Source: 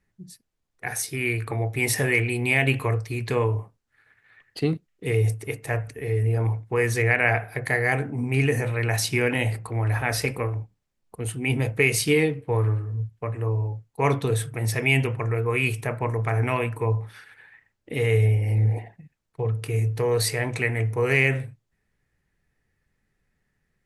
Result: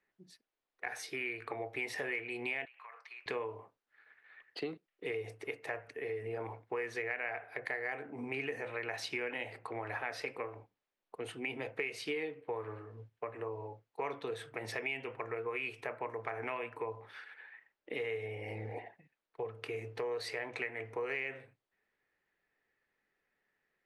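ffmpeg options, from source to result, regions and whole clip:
-filter_complex "[0:a]asettb=1/sr,asplit=3[s0][s1][s2];[s0]atrim=end=2.654[s3];[s1]atrim=start=2.65:end=3.26,asetpts=PTS-STARTPTS,afade=t=in:d=0.004:c=qsin,afade=t=out:st=0.606:d=0.004:c=qsin,highpass=f=1000:w=0.5412,highpass=f=1000:w=1.3066,aemphasis=mode=reproduction:type=riaa,acompressor=threshold=0.00794:ratio=10:attack=3.2:release=140:knee=1:detection=peak[s4];[s2]atrim=start=3.256[s5];[s3][s4]acrossfade=d=0.004:c1=hsin:c2=qsin[s6];[s6][s5]acrossfade=d=0.004:c1=qsin:c2=hsin,acrossover=split=310 4500:gain=0.0708 1 0.1[s7][s8][s9];[s7][s8][s9]amix=inputs=3:normalize=0,acompressor=threshold=0.02:ratio=4,volume=0.75"

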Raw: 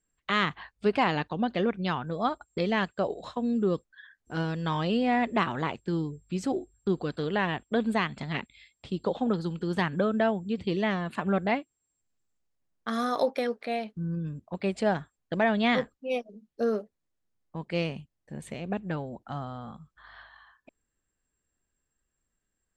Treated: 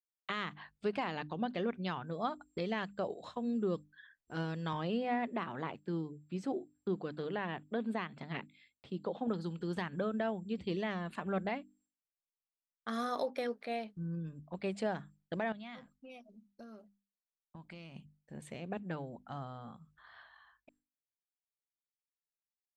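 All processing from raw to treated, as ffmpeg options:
-filter_complex "[0:a]asettb=1/sr,asplit=3[s0][s1][s2];[s0]atrim=end=4.734[s3];[s1]atrim=start=4.73:end=9.28,asetpts=PTS-STARTPTS,afade=t=in:d=0.004:c=qsin,afade=t=out:st=4.546:d=0.004:c=qsin,highpass=120,highshelf=f=3900:g=-9.5,bandreject=f=7100:w=19[s4];[s2]atrim=start=9.276[s5];[s3][s4]acrossfade=d=0.004:c1=hsin:c2=qsin[s6];[s6][s5]acrossfade=d=0.004:c1=qsin:c2=hsin,asettb=1/sr,asplit=3[s7][s8][s9];[s7]atrim=end=15.524[s10];[s8]atrim=start=15.52:end=17.96,asetpts=PTS-STARTPTS,afade=t=in:d=0.004:c=qsin,afade=t=out:st=2.436:d=0.004:c=qsin,bandreject=f=1800:w=8.8,acompressor=threshold=0.0158:ratio=8:attack=3.2:release=140:knee=1:detection=peak,equalizer=f=450:t=o:w=0.38:g=-15[s11];[s9]atrim=start=17.956[s12];[s10][s11]acrossfade=d=0.004:c1=hsin:c2=qsin[s13];[s13][s12]acrossfade=d=0.004:c1=qsin:c2=hsin,agate=range=0.0224:threshold=0.00112:ratio=3:detection=peak,bandreject=f=50:t=h:w=6,bandreject=f=100:t=h:w=6,bandreject=f=150:t=h:w=6,bandreject=f=200:t=h:w=6,bandreject=f=250:t=h:w=6,bandreject=f=300:t=h:w=6,alimiter=limit=0.133:level=0:latency=1:release=184,volume=0.447"

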